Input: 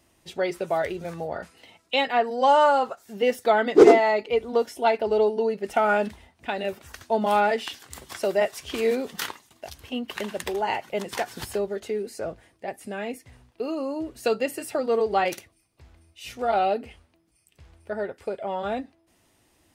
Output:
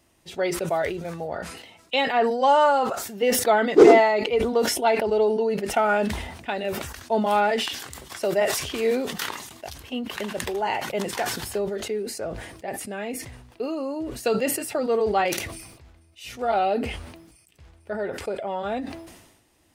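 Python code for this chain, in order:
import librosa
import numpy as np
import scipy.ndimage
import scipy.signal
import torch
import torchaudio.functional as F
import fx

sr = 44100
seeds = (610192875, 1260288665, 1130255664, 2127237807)

y = fx.sustainer(x, sr, db_per_s=54.0)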